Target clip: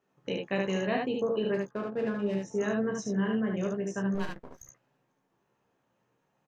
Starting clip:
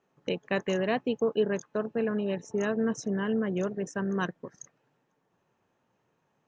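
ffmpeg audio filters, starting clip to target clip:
-filter_complex "[0:a]asettb=1/sr,asplit=3[a][b][c];[a]atrim=end=1.544[d];[b]atrim=start=1.54:end=2.36,asetpts=PTS-STARTPTS,afade=t=in:d=0.004:c=qsin,afade=t=out:st=0.816:d=0.004:c=qsin,adynamicsmooth=sensitivity=7.5:basefreq=1.7k[e];[c]atrim=start=2.356[f];[d][e]acrossfade=d=0.004:c1=hsin:c2=qsin[g];[g][f]acrossfade=d=0.004:c1=qsin:c2=hsin,asplit=2[h][i];[i]adelay=15,volume=-6dB[j];[h][j]amix=inputs=2:normalize=0,asplit=3[k][l][m];[k]afade=t=out:st=4.14:d=0.02[n];[l]aeval=exprs='max(val(0),0)':c=same,afade=t=in:st=4.14:d=0.02,afade=t=out:st=4.61:d=0.02[o];[m]afade=t=in:st=4.61:d=0.02[p];[n][o][p]amix=inputs=3:normalize=0,asplit=2[q][r];[r]aecho=0:1:32|73:0.398|0.708[s];[q][s]amix=inputs=2:normalize=0,volume=-4dB"

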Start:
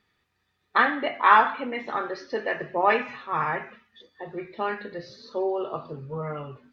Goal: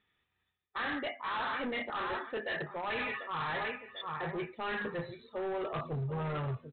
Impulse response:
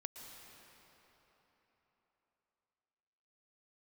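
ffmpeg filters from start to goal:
-af "aemphasis=mode=production:type=75kf,afftdn=nr=13:nf=-36,aecho=1:1:742|1484:0.126|0.0352,areverse,acompressor=threshold=-33dB:ratio=12,areverse,asubboost=boost=3.5:cutoff=130,aresample=8000,asoftclip=type=hard:threshold=-37.5dB,aresample=44100,volume=5dB"

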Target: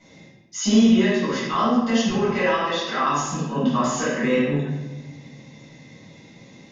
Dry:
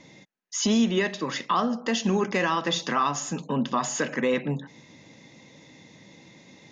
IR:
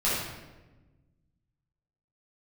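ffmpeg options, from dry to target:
-filter_complex "[0:a]asettb=1/sr,asplit=3[a][b][c];[a]atrim=end=2.094[d];[b]atrim=start=2.09:end=3.06,asetpts=PTS-STARTPTS,afade=t=in:d=0.004:c=qsin,afade=t=out:st=0.966:d=0.004:c=qsin,highpass=330,lowpass=5k[e];[c]atrim=start=3.056[f];[d][e]acrossfade=d=0.004:c1=hsin:c2=qsin[g];[g][f]acrossfade=d=0.004:c1=qsin:c2=hsin[h];[1:a]atrim=start_sample=2205,asetrate=48510,aresample=44100[i];[h][i]afir=irnorm=-1:irlink=0,volume=-7.5dB"

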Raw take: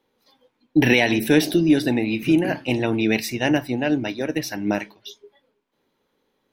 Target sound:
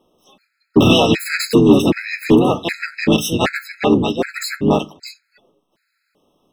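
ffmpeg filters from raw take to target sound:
-filter_complex "[0:a]asplit=3[a][b][c];[b]asetrate=33038,aresample=44100,atempo=1.33484,volume=-2dB[d];[c]asetrate=58866,aresample=44100,atempo=0.749154,volume=-3dB[e];[a][d][e]amix=inputs=3:normalize=0,acontrast=89,afftfilt=real='re*gt(sin(2*PI*1.3*pts/sr)*(1-2*mod(floor(b*sr/1024/1300),2)),0)':imag='im*gt(sin(2*PI*1.3*pts/sr)*(1-2*mod(floor(b*sr/1024/1300),2)),0)':win_size=1024:overlap=0.75,volume=-1dB"

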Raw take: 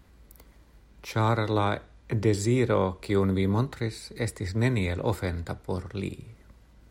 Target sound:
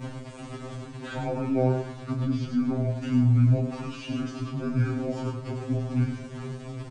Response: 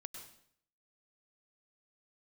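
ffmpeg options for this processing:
-filter_complex "[0:a]aeval=exprs='val(0)+0.5*0.0299*sgn(val(0))':c=same,aresample=32000,aresample=44100,asplit=2[a][b];[b]acompressor=threshold=-31dB:ratio=6,volume=-1dB[c];[a][c]amix=inputs=2:normalize=0,asetrate=27781,aresample=44100,atempo=1.5874,equalizer=f=230:w=0.47:g=12,alimiter=limit=-7.5dB:level=0:latency=1:release=28,asplit=2[d][e];[e]adelay=25,volume=-6dB[f];[d][f]amix=inputs=2:normalize=0,asplit=2[g][h];[h]aecho=0:1:101:0.398[i];[g][i]amix=inputs=2:normalize=0,acrossover=split=3600[j][k];[k]acompressor=threshold=-41dB:ratio=4:attack=1:release=60[l];[j][l]amix=inputs=2:normalize=0,afftfilt=real='re*2.45*eq(mod(b,6),0)':imag='im*2.45*eq(mod(b,6),0)':win_size=2048:overlap=0.75,volume=-8.5dB"

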